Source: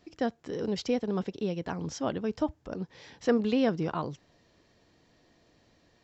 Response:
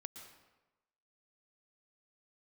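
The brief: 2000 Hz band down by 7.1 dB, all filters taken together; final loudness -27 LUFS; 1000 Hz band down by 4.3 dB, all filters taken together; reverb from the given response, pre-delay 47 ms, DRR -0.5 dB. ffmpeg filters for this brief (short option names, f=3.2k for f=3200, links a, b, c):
-filter_complex "[0:a]equalizer=f=1k:t=o:g=-4.5,equalizer=f=2k:t=o:g=-8,asplit=2[a][b];[1:a]atrim=start_sample=2205,adelay=47[c];[b][c]afir=irnorm=-1:irlink=0,volume=5dB[d];[a][d]amix=inputs=2:normalize=0,volume=2dB"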